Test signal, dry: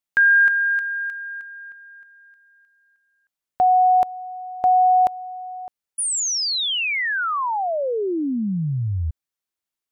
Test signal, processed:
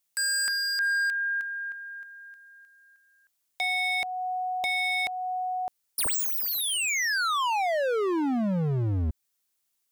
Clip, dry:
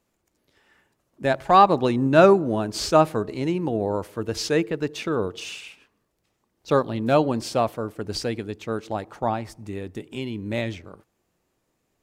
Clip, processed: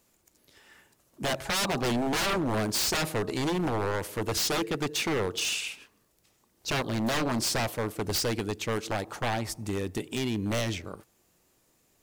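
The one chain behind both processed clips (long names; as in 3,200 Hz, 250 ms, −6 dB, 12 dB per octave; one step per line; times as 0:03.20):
high-shelf EQ 4,000 Hz +10.5 dB
in parallel at +1 dB: downward compressor 6 to 1, threshold −27 dBFS
on the sum: wave folding −18.5 dBFS
level −4 dB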